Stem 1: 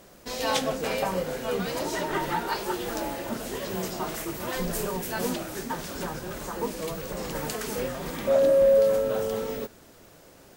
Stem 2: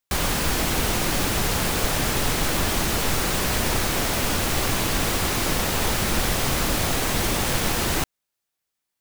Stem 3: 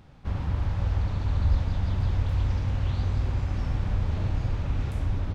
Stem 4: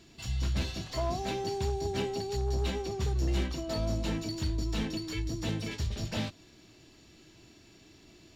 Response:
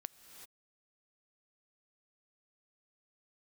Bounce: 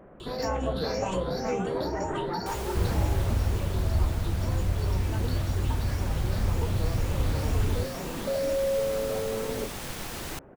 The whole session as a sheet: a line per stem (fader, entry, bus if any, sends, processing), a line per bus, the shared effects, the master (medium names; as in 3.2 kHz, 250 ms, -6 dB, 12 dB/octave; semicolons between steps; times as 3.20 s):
-1.5 dB, 0.00 s, no send, compression 2.5:1, threshold -30 dBFS, peak gain reduction 9 dB; Gaussian low-pass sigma 5.3 samples
-18.0 dB, 2.35 s, no send, none
+0.5 dB, 2.50 s, no send, none
-16.5 dB, 0.20 s, no send, drifting ripple filter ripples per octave 0.65, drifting +2 Hz, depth 23 dB; level flattener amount 70%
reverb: none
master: gain riding within 5 dB 2 s